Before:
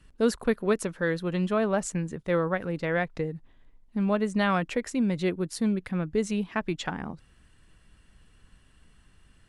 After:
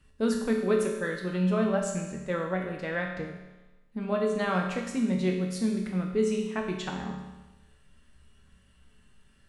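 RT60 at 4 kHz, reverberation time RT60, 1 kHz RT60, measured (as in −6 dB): 1.1 s, 1.1 s, 1.1 s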